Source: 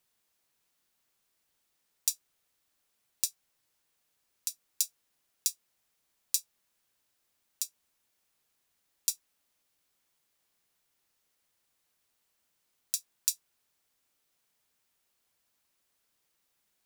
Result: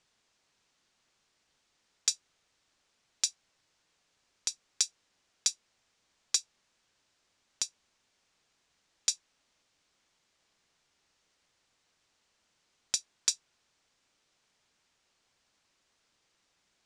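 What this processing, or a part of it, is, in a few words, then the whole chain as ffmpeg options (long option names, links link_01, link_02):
synthesiser wavefolder: -af "aeval=exprs='0.178*(abs(mod(val(0)/0.178+3,4)-2)-1)':channel_layout=same,lowpass=frequency=7100:width=0.5412,lowpass=frequency=7100:width=1.3066,volume=6.5dB"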